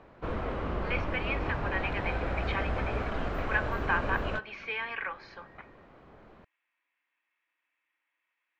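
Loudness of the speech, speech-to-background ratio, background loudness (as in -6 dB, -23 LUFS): -34.5 LUFS, -0.5 dB, -34.0 LUFS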